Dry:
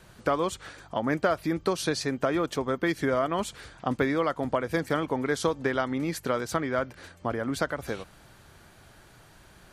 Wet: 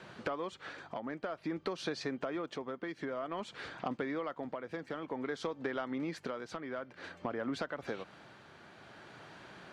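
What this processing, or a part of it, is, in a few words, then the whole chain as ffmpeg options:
AM radio: -af "highpass=180,lowpass=3800,acompressor=threshold=0.0141:ratio=6,asoftclip=type=tanh:threshold=0.0422,tremolo=f=0.53:d=0.4,volume=1.68"

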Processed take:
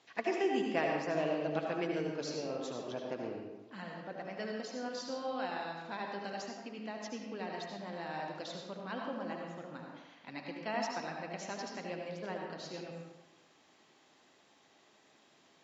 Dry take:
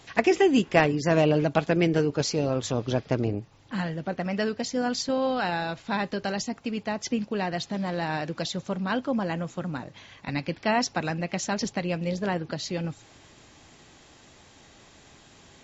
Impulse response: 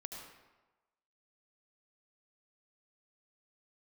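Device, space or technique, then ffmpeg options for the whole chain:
supermarket ceiling speaker: -filter_complex "[0:a]highpass=250,lowpass=6400[s0];[1:a]atrim=start_sample=2205[s1];[s0][s1]afir=irnorm=-1:irlink=0,volume=0.398"

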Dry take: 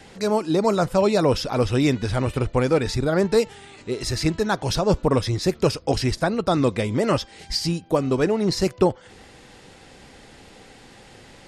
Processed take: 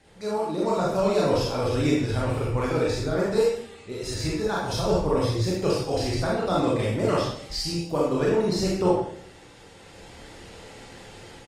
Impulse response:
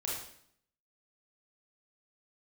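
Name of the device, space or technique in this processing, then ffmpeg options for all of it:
speakerphone in a meeting room: -filter_complex "[1:a]atrim=start_sample=2205[s0];[0:a][s0]afir=irnorm=-1:irlink=0,asplit=2[s1][s2];[s2]adelay=80,highpass=300,lowpass=3400,asoftclip=type=hard:threshold=0.266,volume=0.158[s3];[s1][s3]amix=inputs=2:normalize=0,dynaudnorm=f=540:g=3:m=2.82,volume=0.355" -ar 48000 -c:a libopus -b:a 32k

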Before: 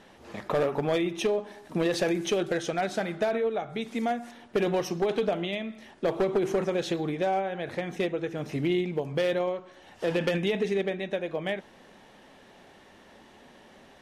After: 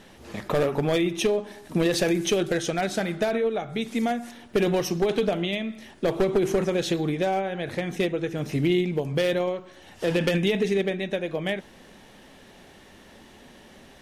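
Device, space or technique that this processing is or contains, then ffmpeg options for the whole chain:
smiley-face EQ: -af "lowshelf=f=81:g=6.5,equalizer=f=860:t=o:w=2:g=-4.5,highshelf=f=9900:g=8,volume=1.78"

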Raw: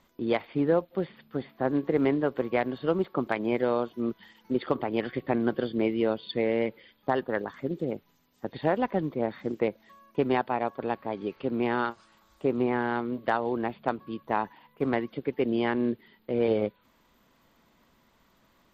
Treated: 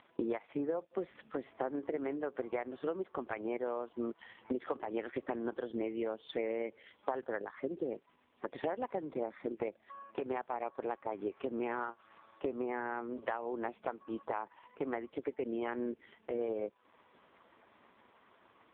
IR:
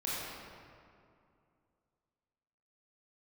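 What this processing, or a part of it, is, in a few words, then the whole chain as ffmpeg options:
voicemail: -af "highpass=330,lowpass=3000,acompressor=threshold=0.01:ratio=8,volume=2.37" -ar 8000 -c:a libopencore_amrnb -b:a 4750

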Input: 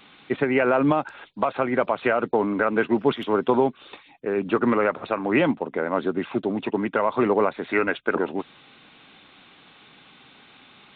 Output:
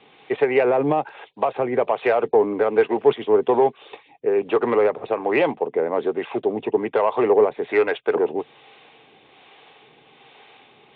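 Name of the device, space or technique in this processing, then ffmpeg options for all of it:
guitar amplifier with harmonic tremolo: -filter_complex "[0:a]acrossover=split=450[s0][s1];[s0]aeval=exprs='val(0)*(1-0.5/2+0.5/2*cos(2*PI*1.2*n/s))':c=same[s2];[s1]aeval=exprs='val(0)*(1-0.5/2-0.5/2*cos(2*PI*1.2*n/s))':c=same[s3];[s2][s3]amix=inputs=2:normalize=0,asoftclip=type=tanh:threshold=0.188,highpass=77,equalizer=f=87:t=q:w=4:g=-8,equalizer=f=190:t=q:w=4:g=-10,equalizer=f=270:t=q:w=4:g=-6,equalizer=f=440:t=q:w=4:g=9,equalizer=f=780:t=q:w=4:g=6,equalizer=f=1400:t=q:w=4:g=-8,lowpass=f=3500:w=0.5412,lowpass=f=3500:w=1.3066,volume=1.5"

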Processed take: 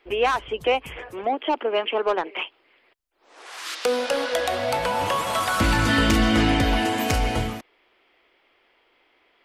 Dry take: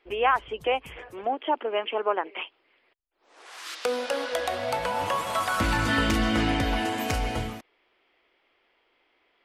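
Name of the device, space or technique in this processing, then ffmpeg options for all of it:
one-band saturation: -filter_complex "[0:a]acrossover=split=530|2300[s0][s1][s2];[s1]asoftclip=type=tanh:threshold=0.0473[s3];[s0][s3][s2]amix=inputs=3:normalize=0,volume=1.88"

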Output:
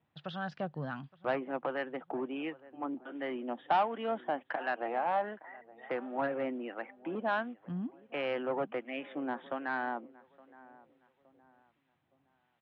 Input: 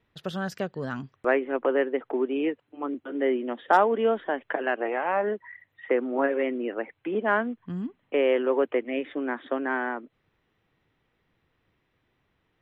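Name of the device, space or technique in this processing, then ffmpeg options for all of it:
guitar amplifier with harmonic tremolo: -filter_complex "[0:a]lowshelf=f=200:g=-5,asplit=2[s0][s1];[s1]adelay=867,lowpass=f=2000:p=1,volume=0.0794,asplit=2[s2][s3];[s3]adelay=867,lowpass=f=2000:p=1,volume=0.36,asplit=2[s4][s5];[s5]adelay=867,lowpass=f=2000:p=1,volume=0.36[s6];[s0][s2][s4][s6]amix=inputs=4:normalize=0,acrossover=split=1000[s7][s8];[s7]aeval=exprs='val(0)*(1-0.5/2+0.5/2*cos(2*PI*1.4*n/s))':c=same[s9];[s8]aeval=exprs='val(0)*(1-0.5/2-0.5/2*cos(2*PI*1.4*n/s))':c=same[s10];[s9][s10]amix=inputs=2:normalize=0,asoftclip=type=tanh:threshold=0.0944,highpass=78,equalizer=f=150:t=q:w=4:g=8,equalizer=f=420:t=q:w=4:g=-9,equalizer=f=780:t=q:w=4:g=6,equalizer=f=2000:t=q:w=4:g=-3,lowpass=f=3900:w=0.5412,lowpass=f=3900:w=1.3066,volume=0.708"

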